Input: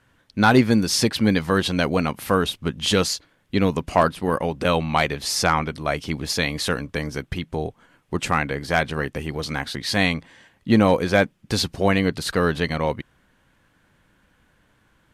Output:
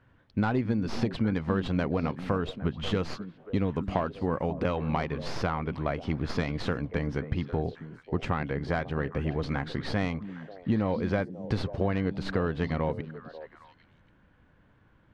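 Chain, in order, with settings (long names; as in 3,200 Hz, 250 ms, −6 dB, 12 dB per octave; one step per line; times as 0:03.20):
stylus tracing distortion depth 0.11 ms
parametric band 96 Hz +4 dB 0.77 octaves
downward compressor, threshold −23 dBFS, peak gain reduction 13 dB
head-to-tape spacing loss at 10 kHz 29 dB
echo through a band-pass that steps 270 ms, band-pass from 200 Hz, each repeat 1.4 octaves, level −8 dB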